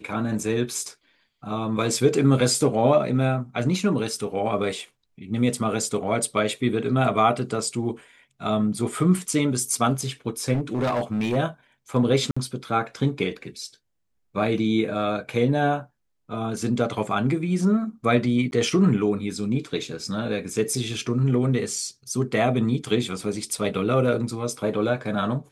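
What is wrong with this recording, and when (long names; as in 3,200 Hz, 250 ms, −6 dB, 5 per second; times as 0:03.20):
0:10.53–0:11.37: clipping −20 dBFS
0:12.31–0:12.37: drop-out 55 ms
0:18.51–0:18.52: drop-out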